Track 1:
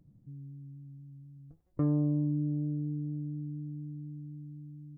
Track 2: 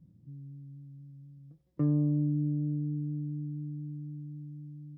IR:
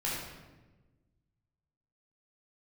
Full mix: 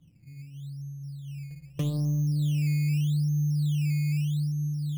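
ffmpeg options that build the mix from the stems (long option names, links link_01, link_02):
-filter_complex "[0:a]dynaudnorm=framelen=230:gausssize=9:maxgain=5.5dB,volume=-8dB,asplit=2[link_01][link_02];[link_02]volume=-14dB[link_03];[1:a]alimiter=level_in=2dB:limit=-24dB:level=0:latency=1,volume=-2dB,asubboost=boost=11.5:cutoff=160,volume=-4dB,asplit=2[link_04][link_05];[link_05]volume=-8dB[link_06];[2:a]atrim=start_sample=2205[link_07];[link_03][link_06]amix=inputs=2:normalize=0[link_08];[link_08][link_07]afir=irnorm=-1:irlink=0[link_09];[link_01][link_04][link_09]amix=inputs=3:normalize=0,equalizer=frequency=710:width=4.5:gain=7,acrusher=samples=13:mix=1:aa=0.000001:lfo=1:lforange=13:lforate=0.81,acompressor=threshold=-24dB:ratio=6"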